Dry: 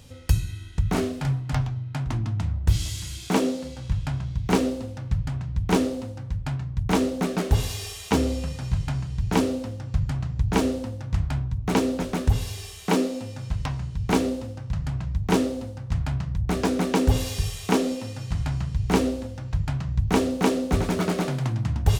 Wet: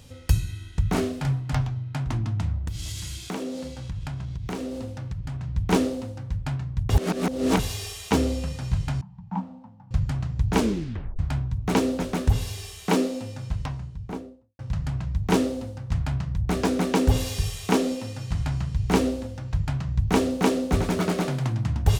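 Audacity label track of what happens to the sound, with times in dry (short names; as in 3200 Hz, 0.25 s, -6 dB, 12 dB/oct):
2.670000	5.430000	compressor 5:1, threshold -28 dBFS
6.900000	7.590000	reverse
9.010000	9.910000	double band-pass 410 Hz, apart 2.2 oct
10.580000	10.580000	tape stop 0.61 s
13.270000	14.590000	studio fade out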